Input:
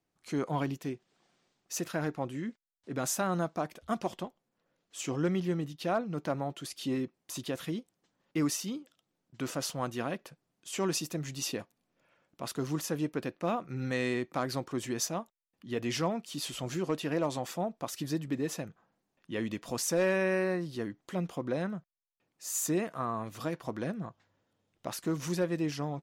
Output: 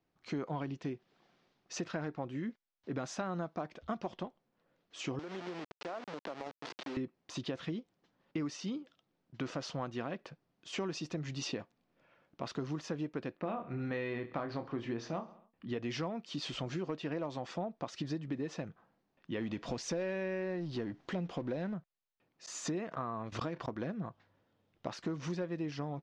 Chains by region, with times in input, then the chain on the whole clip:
0:05.19–0:06.97: hold until the input has moved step −32.5 dBFS + high-pass filter 370 Hz + downward compressor 10 to 1, threshold −38 dBFS
0:13.37–0:15.69: low-pass filter 3,300 Hz + double-tracking delay 26 ms −7 dB + repeating echo 67 ms, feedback 49%, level −18.5 dB
0:19.41–0:21.74: mu-law and A-law mismatch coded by mu + dynamic equaliser 1,200 Hz, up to −7 dB, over −51 dBFS, Q 2.8
0:22.46–0:23.76: noise gate −42 dBFS, range −32 dB + background raised ahead of every attack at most 77 dB per second
whole clip: low-pass filter 5,700 Hz 24 dB per octave; high-shelf EQ 4,300 Hz −7 dB; downward compressor 5 to 1, threshold −37 dBFS; level +2.5 dB

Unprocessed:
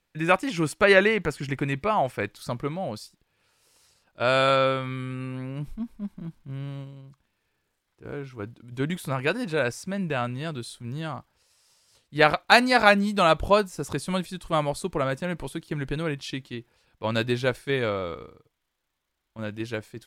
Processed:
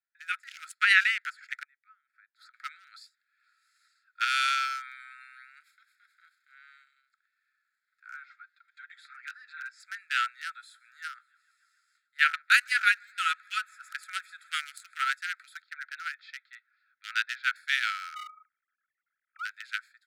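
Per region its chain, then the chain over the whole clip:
0:01.63–0:02.54: gate with flip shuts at −28 dBFS, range −27 dB + parametric band 11,000 Hz −9 dB 2.6 octaves
0:04.24–0:06.54: downward compressor 2 to 1, threshold −36 dBFS + high-shelf EQ 2,200 Hz +8.5 dB
0:08.23–0:09.80: low-pass filter 5,600 Hz + downward compressor 2.5 to 1, threshold −42 dBFS + comb filter 5.7 ms, depth 83%
0:10.45–0:15.08: parametric band 4,200 Hz −7 dB 0.57 octaves + delay with a high-pass on its return 144 ms, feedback 81%, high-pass 2,000 Hz, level −23 dB
0:15.62–0:17.56: high-pass filter 78 Hz 24 dB per octave + high-frequency loss of the air 240 metres
0:18.15–0:19.45: three sine waves on the formant tracks + hollow resonant body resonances 410/1,200 Hz, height 14 dB, ringing for 30 ms
whole clip: adaptive Wiener filter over 15 samples; Chebyshev high-pass filter 1,300 Hz, order 10; automatic gain control gain up to 16 dB; level −8 dB

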